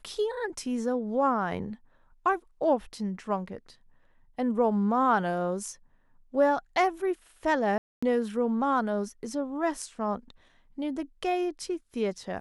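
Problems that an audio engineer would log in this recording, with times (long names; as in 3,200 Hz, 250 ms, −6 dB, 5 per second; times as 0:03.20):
0:07.78–0:08.03: drop-out 245 ms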